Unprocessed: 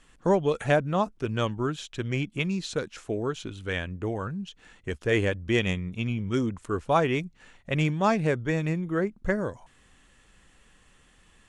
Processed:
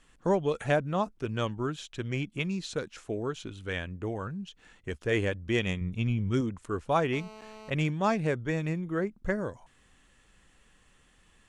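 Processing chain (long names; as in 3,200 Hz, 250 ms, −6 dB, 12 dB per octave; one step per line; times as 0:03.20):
0:05.81–0:06.41: low-shelf EQ 130 Hz +10 dB
0:07.13–0:07.70: phone interference −44 dBFS
level −3.5 dB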